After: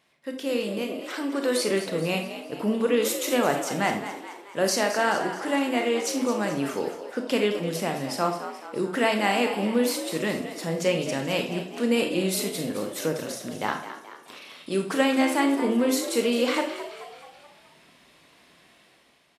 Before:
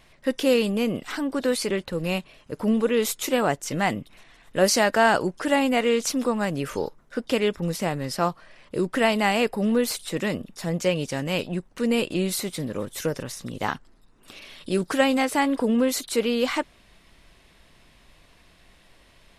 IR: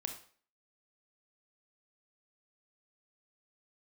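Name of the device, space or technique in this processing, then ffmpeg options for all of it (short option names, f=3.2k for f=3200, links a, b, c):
far laptop microphone: -filter_complex "[0:a]asettb=1/sr,asplit=3[a][b][c];[a]atrim=end=0.784[d];[b]atrim=start=0.78:end=1.57,asetpts=PTS-STARTPTS,afade=t=in:d=0.004:c=qsin,afade=t=out:st=0.786:d=0.004:c=qsin,highpass=f=260:w=0.5412,highpass=f=260:w=1.3066[e];[c]atrim=start=1.566[f];[d][e]acrossfade=d=0.004:c1=hsin:c2=qsin[g];[g][f]acrossfade=d=0.004:c1=qsin:c2=hsin[h];[1:a]atrim=start_sample=2205[i];[h][i]afir=irnorm=-1:irlink=0,highpass=180,dynaudnorm=f=210:g=7:m=10dB,asplit=7[j][k][l][m][n][o][p];[k]adelay=215,afreqshift=68,volume=-11.5dB[q];[l]adelay=430,afreqshift=136,volume=-17.2dB[r];[m]adelay=645,afreqshift=204,volume=-22.9dB[s];[n]adelay=860,afreqshift=272,volume=-28.5dB[t];[o]adelay=1075,afreqshift=340,volume=-34.2dB[u];[p]adelay=1290,afreqshift=408,volume=-39.9dB[v];[j][q][r][s][t][u][v]amix=inputs=7:normalize=0,volume=-8dB"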